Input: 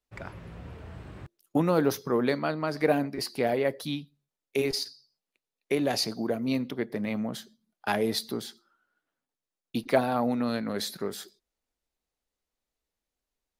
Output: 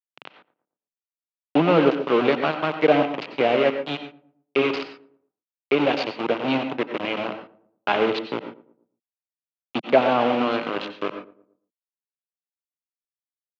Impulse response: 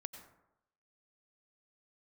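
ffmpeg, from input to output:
-filter_complex "[0:a]acontrast=88,aresample=16000,aeval=exprs='val(0)*gte(abs(val(0)),0.1)':c=same,aresample=44100,highpass=f=160:w=0.5412,highpass=f=160:w=1.3066,equalizer=f=210:t=q:w=4:g=-9,equalizer=f=1.8k:t=q:w=4:g=-6,equalizer=f=2.8k:t=q:w=4:g=5,lowpass=f=3.2k:w=0.5412,lowpass=f=3.2k:w=1.3066,asplit=2[a][b];[b]adelay=114,lowpass=f=1k:p=1,volume=-17dB,asplit=2[c][d];[d]adelay=114,lowpass=f=1k:p=1,volume=0.44,asplit=2[e][f];[f]adelay=114,lowpass=f=1k:p=1,volume=0.44,asplit=2[g][h];[h]adelay=114,lowpass=f=1k:p=1,volume=0.44[i];[a][c][e][g][i]amix=inputs=5:normalize=0[j];[1:a]atrim=start_sample=2205,atrim=end_sample=6615[k];[j][k]afir=irnorm=-1:irlink=0,volume=5dB"

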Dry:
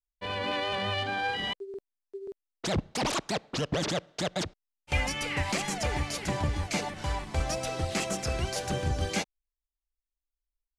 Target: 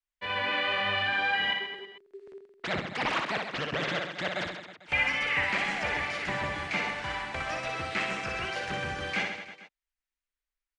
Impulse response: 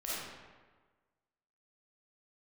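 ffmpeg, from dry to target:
-filter_complex "[0:a]acrossover=split=3900[a][b];[b]acompressor=threshold=-50dB:ratio=4:attack=1:release=60[c];[a][c]amix=inputs=2:normalize=0,equalizer=f=1.9k:t=o:w=2:g=13,acrossover=split=120[d][e];[d]acompressor=threshold=-40dB:ratio=6[f];[e]aecho=1:1:60|132|218.4|322.1|446.5:0.631|0.398|0.251|0.158|0.1[g];[f][g]amix=inputs=2:normalize=0,aresample=22050,aresample=44100,volume=-7dB"

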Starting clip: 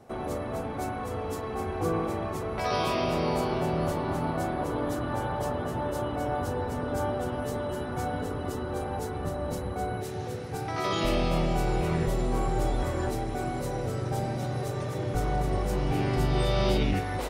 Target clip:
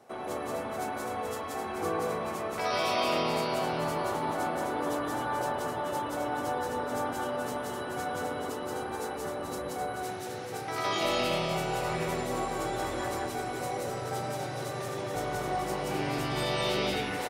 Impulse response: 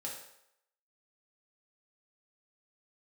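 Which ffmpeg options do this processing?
-filter_complex "[0:a]highpass=f=560:p=1,asplit=2[a][b];[b]aecho=0:1:177.8|274.1:0.891|0.251[c];[a][c]amix=inputs=2:normalize=0"

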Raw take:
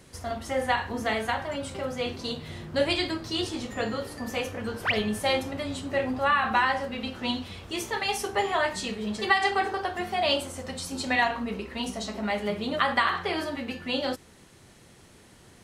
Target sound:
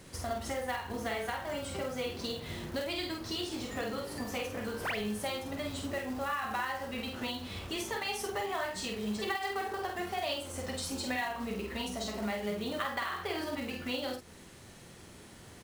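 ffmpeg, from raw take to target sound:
-filter_complex "[0:a]acompressor=threshold=-35dB:ratio=4,acrusher=bits=4:mode=log:mix=0:aa=0.000001,asplit=2[a][b];[b]adelay=48,volume=-4.5dB[c];[a][c]amix=inputs=2:normalize=0"

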